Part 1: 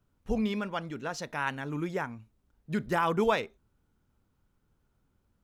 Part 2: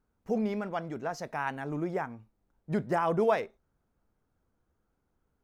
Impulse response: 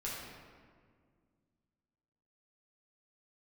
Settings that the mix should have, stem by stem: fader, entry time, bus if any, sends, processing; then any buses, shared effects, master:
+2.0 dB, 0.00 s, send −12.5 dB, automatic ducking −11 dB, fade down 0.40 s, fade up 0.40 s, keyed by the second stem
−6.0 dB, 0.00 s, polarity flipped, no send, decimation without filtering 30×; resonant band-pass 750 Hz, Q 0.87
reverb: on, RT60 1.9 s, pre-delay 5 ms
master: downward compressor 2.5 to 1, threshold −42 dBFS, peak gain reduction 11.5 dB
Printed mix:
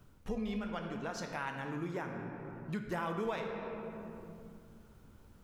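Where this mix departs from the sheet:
stem 1 +2.0 dB → +12.0 dB
stem 2: polarity flipped

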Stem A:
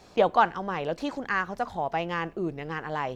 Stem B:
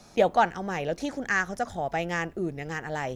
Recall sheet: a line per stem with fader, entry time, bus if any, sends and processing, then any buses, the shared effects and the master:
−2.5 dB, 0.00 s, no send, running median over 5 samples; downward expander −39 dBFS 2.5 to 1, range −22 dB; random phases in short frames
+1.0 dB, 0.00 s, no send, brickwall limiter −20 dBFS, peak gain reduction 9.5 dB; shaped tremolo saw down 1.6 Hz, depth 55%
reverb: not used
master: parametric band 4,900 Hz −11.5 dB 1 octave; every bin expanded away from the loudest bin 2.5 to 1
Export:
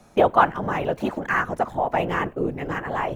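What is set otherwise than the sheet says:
stem A −2.5 dB → +5.0 dB
master: missing every bin expanded away from the loudest bin 2.5 to 1

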